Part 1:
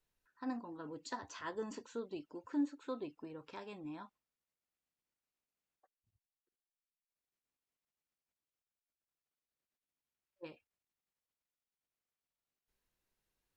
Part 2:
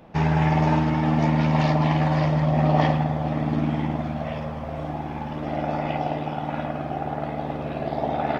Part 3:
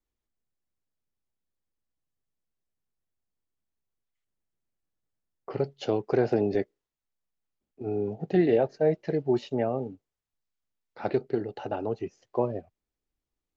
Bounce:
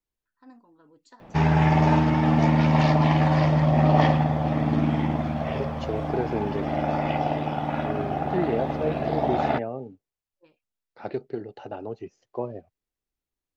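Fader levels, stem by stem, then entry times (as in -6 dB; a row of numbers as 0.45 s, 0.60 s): -10.0 dB, +1.0 dB, -4.0 dB; 0.00 s, 1.20 s, 0.00 s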